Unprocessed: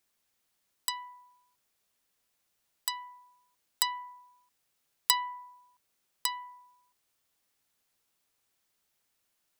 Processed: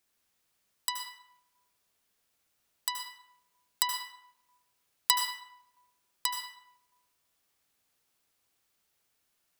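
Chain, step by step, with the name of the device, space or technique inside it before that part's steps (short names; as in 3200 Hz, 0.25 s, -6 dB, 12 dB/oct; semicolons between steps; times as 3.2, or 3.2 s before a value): 3.82–4.23 elliptic high-pass 260 Hz; bathroom (reverb RT60 0.80 s, pre-delay 72 ms, DRR 3 dB)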